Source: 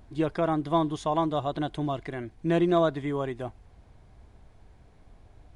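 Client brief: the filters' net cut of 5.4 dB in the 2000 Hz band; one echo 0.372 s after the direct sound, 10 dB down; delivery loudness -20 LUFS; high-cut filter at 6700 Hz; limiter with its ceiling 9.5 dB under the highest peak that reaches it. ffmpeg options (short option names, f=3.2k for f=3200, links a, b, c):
-af "lowpass=6.7k,equalizer=f=2k:t=o:g=-7.5,alimiter=limit=-22.5dB:level=0:latency=1,aecho=1:1:372:0.316,volume=12dB"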